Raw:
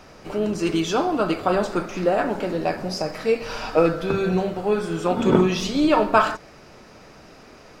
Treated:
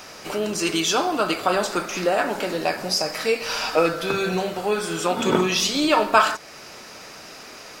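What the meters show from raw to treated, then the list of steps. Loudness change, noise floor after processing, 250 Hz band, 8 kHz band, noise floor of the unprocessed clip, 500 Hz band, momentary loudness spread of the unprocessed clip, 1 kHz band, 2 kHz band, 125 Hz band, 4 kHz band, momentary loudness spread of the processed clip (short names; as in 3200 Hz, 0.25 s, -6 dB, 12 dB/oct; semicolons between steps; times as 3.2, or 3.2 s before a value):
0.0 dB, -42 dBFS, -3.5 dB, +10.5 dB, -47 dBFS, -1.5 dB, 8 LU, +1.0 dB, +4.5 dB, -5.5 dB, +8.0 dB, 20 LU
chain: tilt +3 dB/oct; in parallel at -1 dB: compressor, threshold -33 dBFS, peak gain reduction 20.5 dB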